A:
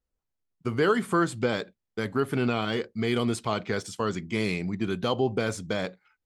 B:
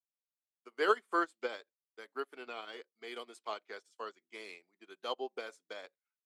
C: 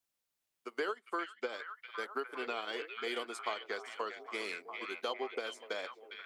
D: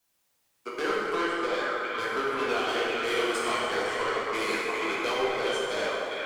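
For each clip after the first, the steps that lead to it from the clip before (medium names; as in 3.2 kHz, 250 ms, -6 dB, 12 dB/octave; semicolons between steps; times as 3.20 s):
Bessel high-pass 520 Hz, order 6; upward expansion 2.5:1, over -43 dBFS
compression 12:1, threshold -43 dBFS, peak gain reduction 22 dB; repeats whose band climbs or falls 406 ms, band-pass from 2.5 kHz, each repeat -0.7 oct, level -3 dB; trim +9.5 dB
saturation -37 dBFS, distortion -9 dB; plate-style reverb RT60 3 s, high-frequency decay 0.55×, DRR -6 dB; trim +8.5 dB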